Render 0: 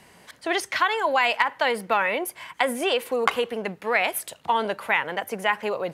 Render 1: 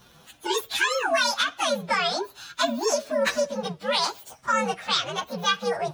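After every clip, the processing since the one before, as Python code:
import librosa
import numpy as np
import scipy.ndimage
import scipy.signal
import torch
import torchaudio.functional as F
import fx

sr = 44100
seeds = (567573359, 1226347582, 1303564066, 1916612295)

y = fx.partial_stretch(x, sr, pct=129)
y = y * librosa.db_to_amplitude(3.5)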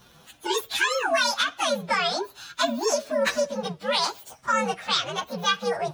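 y = x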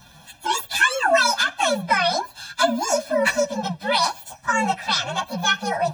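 y = fx.dynamic_eq(x, sr, hz=3900.0, q=1.6, threshold_db=-36.0, ratio=4.0, max_db=-4)
y = y + 0.97 * np.pad(y, (int(1.2 * sr / 1000.0), 0))[:len(y)]
y = y * librosa.db_to_amplitude(2.5)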